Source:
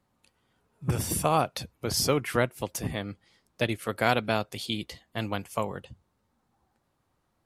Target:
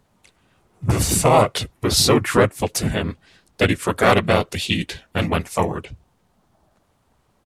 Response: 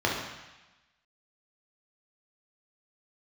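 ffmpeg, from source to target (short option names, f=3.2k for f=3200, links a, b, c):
-filter_complex "[0:a]asplit=3[a][b][c];[b]asetrate=35002,aresample=44100,atempo=1.25992,volume=0dB[d];[c]asetrate=37084,aresample=44100,atempo=1.18921,volume=-1dB[e];[a][d][e]amix=inputs=3:normalize=0,acontrast=64"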